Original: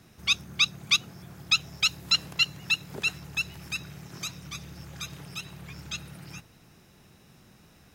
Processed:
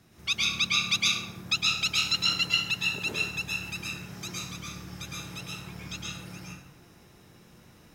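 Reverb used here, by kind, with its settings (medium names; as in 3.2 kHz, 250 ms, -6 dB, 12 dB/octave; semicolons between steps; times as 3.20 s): plate-style reverb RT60 0.87 s, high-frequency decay 0.6×, pre-delay 100 ms, DRR -5.5 dB; trim -4.5 dB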